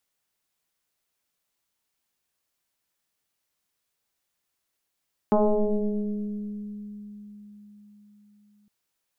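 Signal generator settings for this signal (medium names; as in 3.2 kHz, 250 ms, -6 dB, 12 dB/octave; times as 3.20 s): FM tone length 3.36 s, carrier 207 Hz, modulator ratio 1.02, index 3.4, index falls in 3.25 s exponential, decay 4.68 s, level -16 dB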